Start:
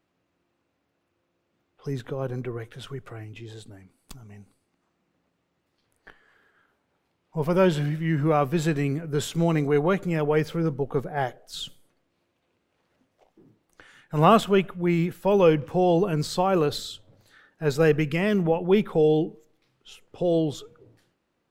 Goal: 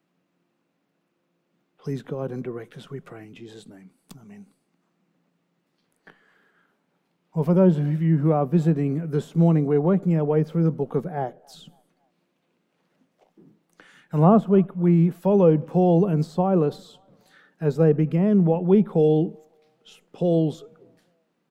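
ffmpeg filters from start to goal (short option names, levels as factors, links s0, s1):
-filter_complex "[0:a]lowshelf=f=120:t=q:w=3:g=-12,acrossover=split=660|960[s0][s1][s2];[s1]aecho=1:1:275|550|825:0.0794|0.0365|0.0168[s3];[s2]acompressor=threshold=0.00501:ratio=12[s4];[s0][s3][s4]amix=inputs=3:normalize=0"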